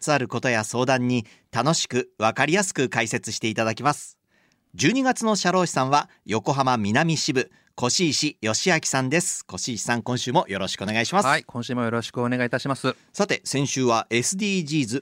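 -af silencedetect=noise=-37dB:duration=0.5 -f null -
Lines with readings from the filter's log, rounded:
silence_start: 4.10
silence_end: 4.74 | silence_duration: 0.65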